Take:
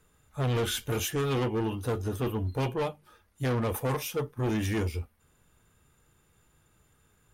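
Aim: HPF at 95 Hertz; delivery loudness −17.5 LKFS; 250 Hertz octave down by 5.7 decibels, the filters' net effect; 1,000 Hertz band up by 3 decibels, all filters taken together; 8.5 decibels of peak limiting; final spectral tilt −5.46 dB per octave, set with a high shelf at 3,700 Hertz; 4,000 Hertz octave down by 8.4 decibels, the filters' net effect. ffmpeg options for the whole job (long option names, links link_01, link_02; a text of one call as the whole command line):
ffmpeg -i in.wav -af "highpass=95,equalizer=frequency=250:width_type=o:gain=-8,equalizer=frequency=1000:width_type=o:gain=5,highshelf=frequency=3700:gain=-5.5,equalizer=frequency=4000:width_type=o:gain=-8.5,volume=20.5dB,alimiter=limit=-7.5dB:level=0:latency=1" out.wav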